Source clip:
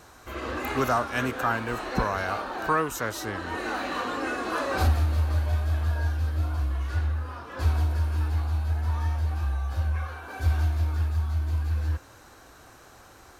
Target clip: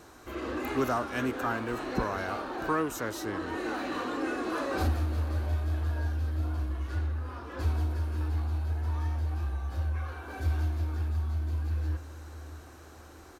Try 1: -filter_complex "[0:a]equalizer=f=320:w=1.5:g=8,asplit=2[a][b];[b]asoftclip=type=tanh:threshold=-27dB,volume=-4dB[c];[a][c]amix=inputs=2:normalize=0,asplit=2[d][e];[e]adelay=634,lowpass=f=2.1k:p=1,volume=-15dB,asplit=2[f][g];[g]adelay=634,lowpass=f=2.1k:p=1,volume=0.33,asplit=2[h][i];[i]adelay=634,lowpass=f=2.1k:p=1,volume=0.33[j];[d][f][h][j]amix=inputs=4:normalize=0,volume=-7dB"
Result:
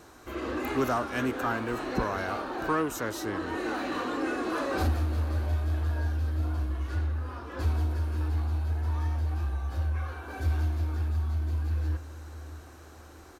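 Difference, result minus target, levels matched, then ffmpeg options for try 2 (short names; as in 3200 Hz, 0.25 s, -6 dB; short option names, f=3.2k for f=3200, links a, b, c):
soft clip: distortion -5 dB
-filter_complex "[0:a]equalizer=f=320:w=1.5:g=8,asplit=2[a][b];[b]asoftclip=type=tanh:threshold=-37.5dB,volume=-4dB[c];[a][c]amix=inputs=2:normalize=0,asplit=2[d][e];[e]adelay=634,lowpass=f=2.1k:p=1,volume=-15dB,asplit=2[f][g];[g]adelay=634,lowpass=f=2.1k:p=1,volume=0.33,asplit=2[h][i];[i]adelay=634,lowpass=f=2.1k:p=1,volume=0.33[j];[d][f][h][j]amix=inputs=4:normalize=0,volume=-7dB"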